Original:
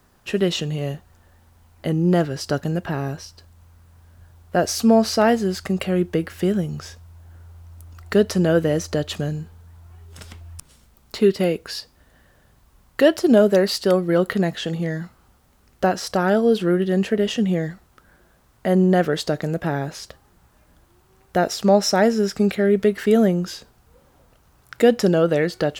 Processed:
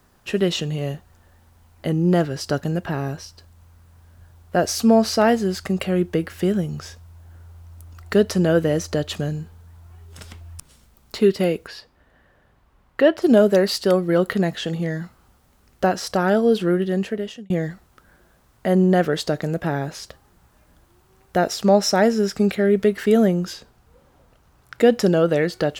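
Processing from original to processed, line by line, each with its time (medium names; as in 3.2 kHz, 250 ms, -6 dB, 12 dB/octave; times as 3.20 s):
11.67–13.22 s: tone controls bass -4 dB, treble -14 dB
16.51–17.50 s: fade out equal-power
23.53–24.92 s: treble shelf 6 kHz -5.5 dB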